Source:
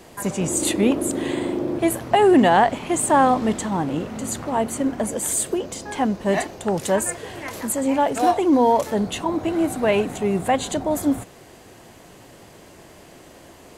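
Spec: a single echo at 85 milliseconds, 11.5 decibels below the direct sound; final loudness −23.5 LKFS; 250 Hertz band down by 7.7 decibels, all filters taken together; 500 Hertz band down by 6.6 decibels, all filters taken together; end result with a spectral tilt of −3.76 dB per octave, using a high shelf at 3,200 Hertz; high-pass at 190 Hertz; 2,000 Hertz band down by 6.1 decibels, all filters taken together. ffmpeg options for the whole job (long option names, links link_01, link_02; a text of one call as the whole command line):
ffmpeg -i in.wav -af "highpass=190,equalizer=frequency=250:width_type=o:gain=-6,equalizer=frequency=500:width_type=o:gain=-6.5,equalizer=frequency=2000:width_type=o:gain=-5.5,highshelf=frequency=3200:gain=-5.5,aecho=1:1:85:0.266,volume=3dB" out.wav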